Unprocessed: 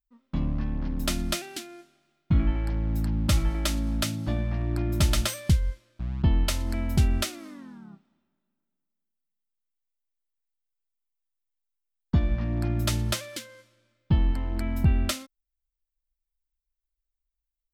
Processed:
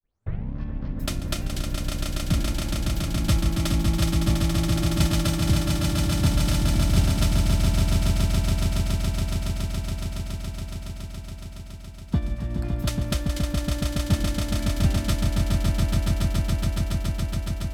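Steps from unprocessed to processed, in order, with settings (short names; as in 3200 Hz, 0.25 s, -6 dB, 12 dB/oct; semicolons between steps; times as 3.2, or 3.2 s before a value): tape start at the beginning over 0.54 s; transient shaper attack +4 dB, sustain -3 dB; swelling echo 0.14 s, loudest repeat 8, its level -5 dB; gain -4 dB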